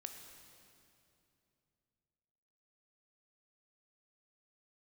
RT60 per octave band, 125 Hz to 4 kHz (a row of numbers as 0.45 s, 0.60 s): 3.6 s, 3.2 s, 2.9 s, 2.6 s, 2.4 s, 2.3 s